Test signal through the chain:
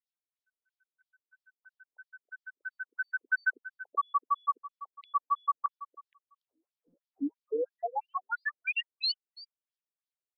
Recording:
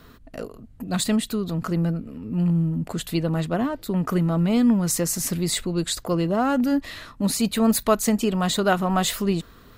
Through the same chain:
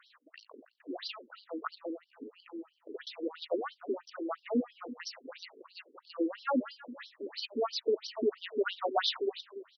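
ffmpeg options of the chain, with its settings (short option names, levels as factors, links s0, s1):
-filter_complex "[0:a]asplit=2[s0][s1];[s1]adelay=285.7,volume=0.178,highshelf=f=4000:g=-6.43[s2];[s0][s2]amix=inputs=2:normalize=0,aeval=exprs='0.501*(cos(1*acos(clip(val(0)/0.501,-1,1)))-cos(1*PI/2))+0.02*(cos(5*acos(clip(val(0)/0.501,-1,1)))-cos(5*PI/2))':c=same,afftfilt=real='re*between(b*sr/1024,330*pow(4300/330,0.5+0.5*sin(2*PI*3*pts/sr))/1.41,330*pow(4300/330,0.5+0.5*sin(2*PI*3*pts/sr))*1.41)':imag='im*between(b*sr/1024,330*pow(4300/330,0.5+0.5*sin(2*PI*3*pts/sr))/1.41,330*pow(4300/330,0.5+0.5*sin(2*PI*3*pts/sr))*1.41)':win_size=1024:overlap=0.75,volume=0.668"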